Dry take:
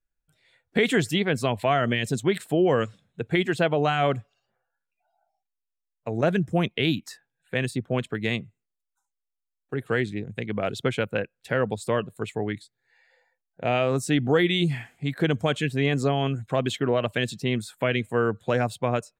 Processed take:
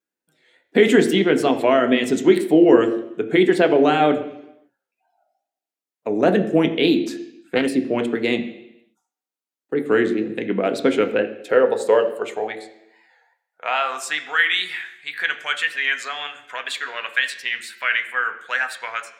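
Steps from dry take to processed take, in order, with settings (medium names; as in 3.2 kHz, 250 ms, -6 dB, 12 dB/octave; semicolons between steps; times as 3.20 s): wow and flutter 110 cents; high-pass sweep 300 Hz -> 1.6 kHz, 10.95–14.46 s; on a send at -5.5 dB: reverberation RT60 0.85 s, pre-delay 3 ms; 7.04–7.67 s: on the sum: loudspeaker Doppler distortion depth 0.15 ms; trim +3 dB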